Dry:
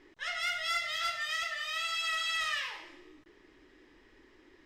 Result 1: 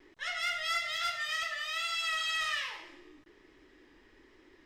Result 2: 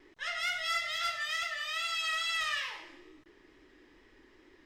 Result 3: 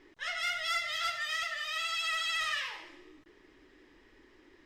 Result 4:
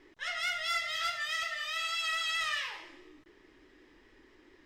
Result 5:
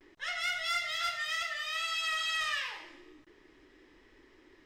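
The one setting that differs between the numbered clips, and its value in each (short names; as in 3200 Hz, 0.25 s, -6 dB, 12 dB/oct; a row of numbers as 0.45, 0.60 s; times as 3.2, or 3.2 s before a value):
vibrato, rate: 1.2, 2.3, 14, 4.7, 0.31 Hz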